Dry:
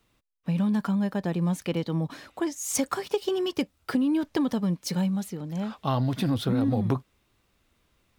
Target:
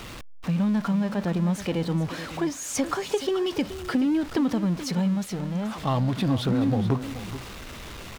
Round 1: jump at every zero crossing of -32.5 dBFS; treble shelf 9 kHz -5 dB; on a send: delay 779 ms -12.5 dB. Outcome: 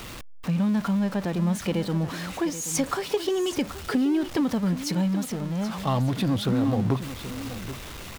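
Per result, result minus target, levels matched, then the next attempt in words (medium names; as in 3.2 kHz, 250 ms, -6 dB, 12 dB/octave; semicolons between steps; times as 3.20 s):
echo 351 ms late; 8 kHz band +3.0 dB
jump at every zero crossing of -32.5 dBFS; treble shelf 9 kHz -5 dB; on a send: delay 428 ms -12.5 dB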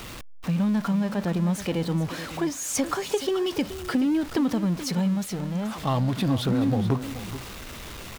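8 kHz band +2.5 dB
jump at every zero crossing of -32.5 dBFS; treble shelf 9 kHz -12.5 dB; on a send: delay 428 ms -12.5 dB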